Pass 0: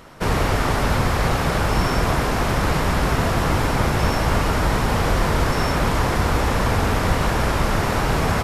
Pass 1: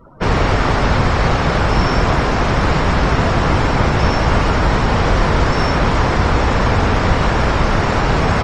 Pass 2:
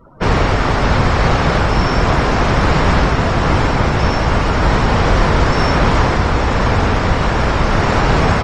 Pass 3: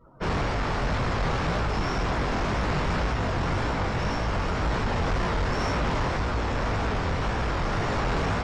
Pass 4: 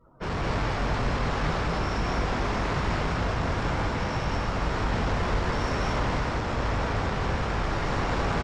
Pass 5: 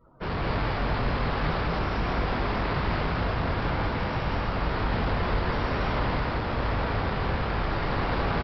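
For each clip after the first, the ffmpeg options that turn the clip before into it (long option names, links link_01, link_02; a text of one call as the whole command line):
ffmpeg -i in.wav -filter_complex "[0:a]acrossover=split=9800[link_01][link_02];[link_02]acompressor=threshold=-56dB:ratio=4:attack=1:release=60[link_03];[link_01][link_03]amix=inputs=2:normalize=0,afftdn=noise_reduction=31:noise_floor=-40,volume=5dB" out.wav
ffmpeg -i in.wav -af "dynaudnorm=framelen=130:gausssize=3:maxgain=11.5dB,volume=-1dB" out.wav
ffmpeg -i in.wav -af "flanger=delay=16.5:depth=7.9:speed=1.9,asoftclip=type=tanh:threshold=-13dB,volume=-7dB" out.wav
ffmpeg -i in.wav -af "aecho=1:1:61.22|209.9:0.355|1,volume=-4dB" out.wav
ffmpeg -i in.wav -af "aresample=11025,aresample=44100" out.wav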